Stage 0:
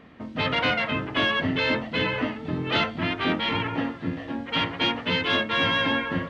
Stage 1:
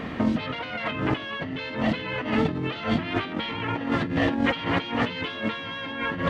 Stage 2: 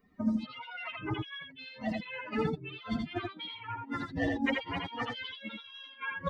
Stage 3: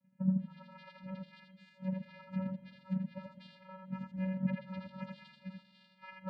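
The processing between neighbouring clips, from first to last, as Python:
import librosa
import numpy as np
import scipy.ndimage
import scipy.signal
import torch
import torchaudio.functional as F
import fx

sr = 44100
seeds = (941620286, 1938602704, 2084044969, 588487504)

y1 = fx.over_compress(x, sr, threshold_db=-37.0, ratio=-1.0)
y1 = F.gain(torch.from_numpy(y1), 8.0).numpy()
y2 = fx.bin_expand(y1, sr, power=3.0)
y2 = y2 + 10.0 ** (-3.5 / 20.0) * np.pad(y2, (int(82 * sr / 1000.0), 0))[:len(y2)]
y2 = F.gain(torch.from_numpy(y2), -2.5).numpy()
y3 = fx.vocoder(y2, sr, bands=8, carrier='square', carrier_hz=188.0)
y3 = fx.rev_spring(y3, sr, rt60_s=2.2, pass_ms=(44, 49), chirp_ms=35, drr_db=13.0)
y3 = fx.env_lowpass_down(y3, sr, base_hz=2300.0, full_db=-27.5)
y3 = F.gain(torch.from_numpy(y3), -2.5).numpy()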